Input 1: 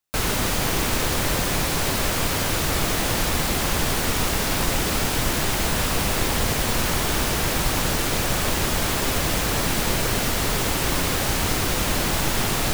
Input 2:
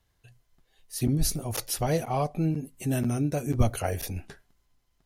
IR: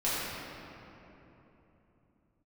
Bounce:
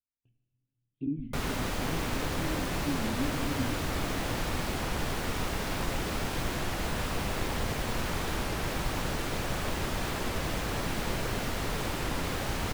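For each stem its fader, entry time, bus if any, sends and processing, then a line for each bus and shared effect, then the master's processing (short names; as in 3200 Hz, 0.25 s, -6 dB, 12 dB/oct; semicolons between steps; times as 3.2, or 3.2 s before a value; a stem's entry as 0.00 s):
-8.0 dB, 1.20 s, no send, dry
-4.5 dB, 0.00 s, send -14.5 dB, vocal tract filter i; gate with hold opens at -58 dBFS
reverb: on, RT60 3.3 s, pre-delay 4 ms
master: high shelf 4500 Hz -9.5 dB; record warp 33 1/3 rpm, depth 160 cents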